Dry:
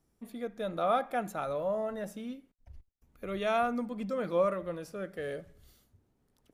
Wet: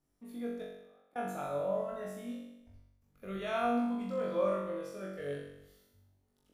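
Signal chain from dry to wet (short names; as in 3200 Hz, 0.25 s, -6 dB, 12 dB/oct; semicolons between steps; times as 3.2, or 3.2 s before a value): 0.62–1.16 flipped gate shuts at -32 dBFS, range -38 dB; flutter echo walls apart 3.6 m, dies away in 0.9 s; gain -8.5 dB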